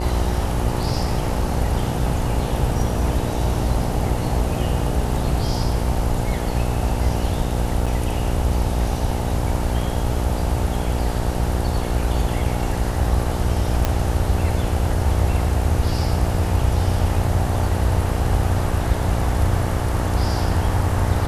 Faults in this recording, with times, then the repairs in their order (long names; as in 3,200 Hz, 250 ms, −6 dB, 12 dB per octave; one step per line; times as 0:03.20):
mains buzz 60 Hz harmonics 15 −25 dBFS
0:07.86–0:07.87: drop-out 5.9 ms
0:13.85: click −5 dBFS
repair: click removal
hum removal 60 Hz, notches 15
repair the gap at 0:07.86, 5.9 ms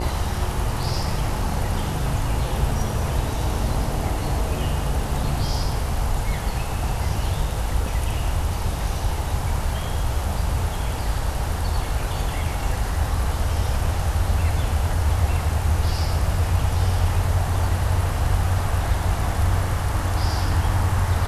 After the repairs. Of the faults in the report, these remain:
none of them is left